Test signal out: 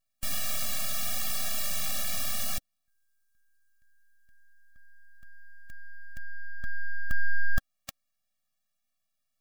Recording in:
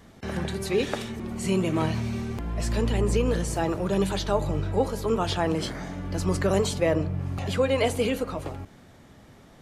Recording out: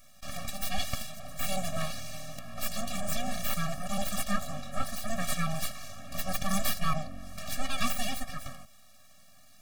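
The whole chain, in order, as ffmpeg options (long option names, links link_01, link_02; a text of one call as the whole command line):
ffmpeg -i in.wav -af "bass=frequency=250:gain=-11,treble=frequency=4000:gain=12,aeval=exprs='abs(val(0))':channel_layout=same,afftfilt=real='re*eq(mod(floor(b*sr/1024/270),2),0)':imag='im*eq(mod(floor(b*sr/1024/270),2),0)':win_size=1024:overlap=0.75" out.wav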